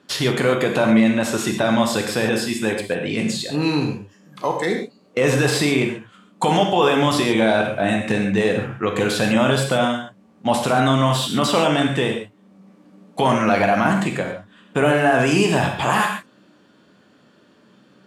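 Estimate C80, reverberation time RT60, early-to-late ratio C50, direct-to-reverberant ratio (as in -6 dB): 7.5 dB, not exponential, 5.0 dB, 2.0 dB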